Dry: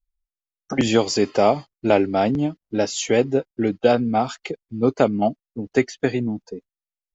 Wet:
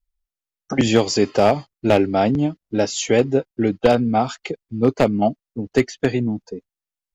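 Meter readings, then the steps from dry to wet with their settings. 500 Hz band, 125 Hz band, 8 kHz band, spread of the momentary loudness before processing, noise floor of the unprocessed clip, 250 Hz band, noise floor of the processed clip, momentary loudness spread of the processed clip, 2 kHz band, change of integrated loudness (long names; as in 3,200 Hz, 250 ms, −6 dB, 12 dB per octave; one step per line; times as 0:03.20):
+1.5 dB, +4.0 dB, can't be measured, 10 LU, below −85 dBFS, +2.0 dB, below −85 dBFS, 9 LU, +1.5 dB, +1.5 dB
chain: wavefolder on the positive side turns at −9.5 dBFS
parametric band 93 Hz +3 dB 1.7 octaves
level +1.5 dB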